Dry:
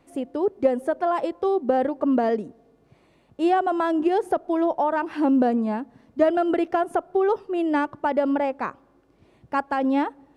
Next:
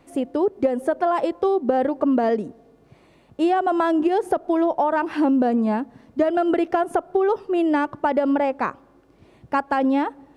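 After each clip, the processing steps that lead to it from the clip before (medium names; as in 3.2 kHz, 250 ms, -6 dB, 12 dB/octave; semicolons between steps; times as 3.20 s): compression, threshold -21 dBFS, peak gain reduction 8 dB; trim +5 dB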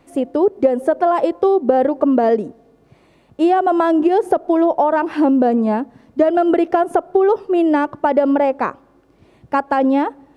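dynamic bell 500 Hz, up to +5 dB, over -30 dBFS, Q 0.71; trim +1.5 dB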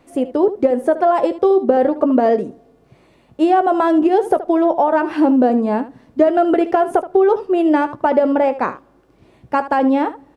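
early reflections 16 ms -12 dB, 75 ms -14 dB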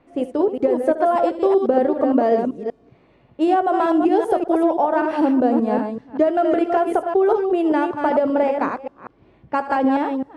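chunks repeated in reverse 193 ms, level -5 dB; level-controlled noise filter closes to 2.8 kHz, open at -13.5 dBFS; trim -4 dB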